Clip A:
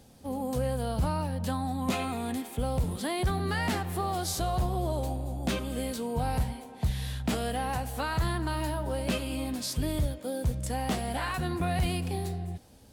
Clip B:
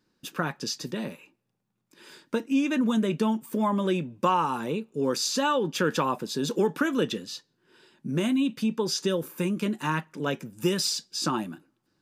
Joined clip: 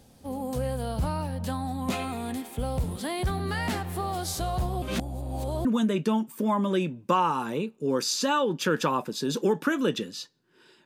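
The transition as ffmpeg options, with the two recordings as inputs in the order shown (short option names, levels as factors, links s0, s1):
-filter_complex "[0:a]apad=whole_dur=10.85,atrim=end=10.85,asplit=2[s0][s1];[s0]atrim=end=4.822[s2];[s1]atrim=start=4.818:end=5.652,asetpts=PTS-STARTPTS,areverse[s3];[1:a]atrim=start=2.788:end=7.99[s4];[s2][s3]acrossfade=d=0.004:c1=hsin:c2=hsin[s5];[s5][s4]acrossfade=d=0.004:c1=hsin:c2=hsin"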